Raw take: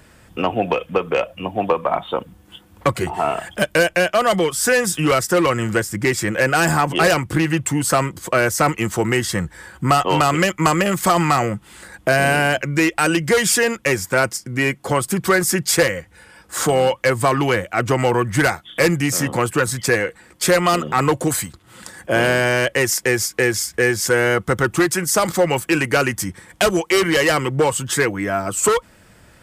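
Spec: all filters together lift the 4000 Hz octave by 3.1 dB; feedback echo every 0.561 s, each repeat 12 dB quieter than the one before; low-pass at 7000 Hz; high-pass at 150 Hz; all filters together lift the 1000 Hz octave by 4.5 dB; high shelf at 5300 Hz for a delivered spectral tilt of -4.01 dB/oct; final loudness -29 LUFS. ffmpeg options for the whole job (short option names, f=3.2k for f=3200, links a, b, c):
-af "highpass=150,lowpass=7k,equalizer=f=1k:t=o:g=6,equalizer=f=4k:t=o:g=8,highshelf=f=5.3k:g=-7.5,aecho=1:1:561|1122|1683:0.251|0.0628|0.0157,volume=-12.5dB"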